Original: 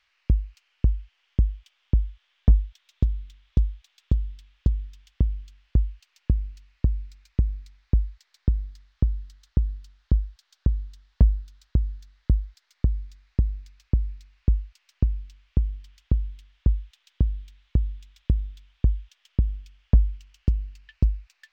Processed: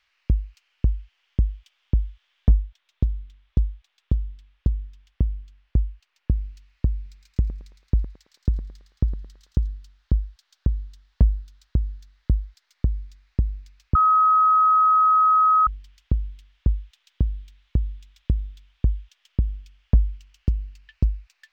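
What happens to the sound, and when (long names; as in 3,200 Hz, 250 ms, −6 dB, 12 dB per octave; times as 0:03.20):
0:02.53–0:06.34: one half of a high-frequency compander decoder only
0:06.95–0:09.68: feedback echo with a high-pass in the loop 110 ms, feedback 61%, high-pass 530 Hz, level −6 dB
0:13.95–0:15.67: beep over 1,270 Hz −13.5 dBFS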